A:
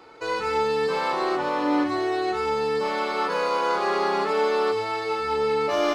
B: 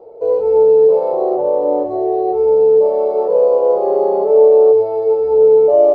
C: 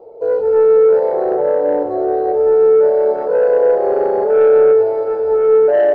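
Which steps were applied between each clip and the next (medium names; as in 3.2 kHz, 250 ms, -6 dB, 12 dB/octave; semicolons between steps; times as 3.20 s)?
FFT filter 110 Hz 0 dB, 290 Hz -6 dB, 450 Hz +14 dB, 650 Hz +12 dB, 1.5 kHz -28 dB, 8 kHz -24 dB; trim +2.5 dB
saturation -7 dBFS, distortion -18 dB; reverberation RT60 5.5 s, pre-delay 98 ms, DRR 10.5 dB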